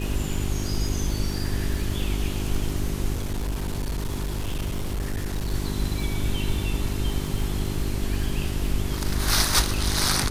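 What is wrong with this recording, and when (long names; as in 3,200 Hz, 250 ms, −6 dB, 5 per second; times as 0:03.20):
surface crackle 60 per second −31 dBFS
mains hum 50 Hz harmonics 8 −29 dBFS
0:03.13–0:05.54: clipping −23.5 dBFS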